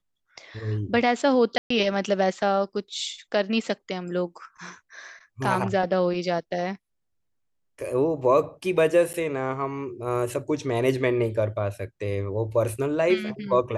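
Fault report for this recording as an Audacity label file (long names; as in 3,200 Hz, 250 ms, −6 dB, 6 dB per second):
1.580000	1.700000	drop-out 124 ms
9.130000	9.140000	drop-out 9.2 ms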